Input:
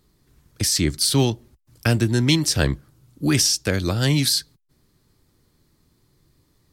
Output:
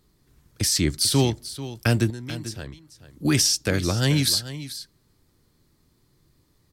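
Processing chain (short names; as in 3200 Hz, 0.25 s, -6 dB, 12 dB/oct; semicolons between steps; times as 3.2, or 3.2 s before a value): 2.1–3.25 compressor 3:1, threshold -37 dBFS, peak gain reduction 17 dB; on a send: echo 0.439 s -14 dB; on the sum: gain -1.5 dB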